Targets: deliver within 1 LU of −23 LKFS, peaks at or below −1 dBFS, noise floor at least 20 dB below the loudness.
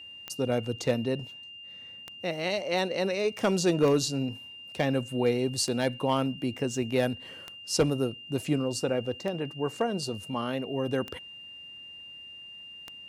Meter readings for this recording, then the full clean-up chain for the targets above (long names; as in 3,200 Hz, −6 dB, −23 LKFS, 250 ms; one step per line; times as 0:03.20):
number of clicks 8; interfering tone 2,800 Hz; level of the tone −43 dBFS; integrated loudness −29.0 LKFS; sample peak −15.0 dBFS; target loudness −23.0 LKFS
→ click removal
notch filter 2,800 Hz, Q 30
level +6 dB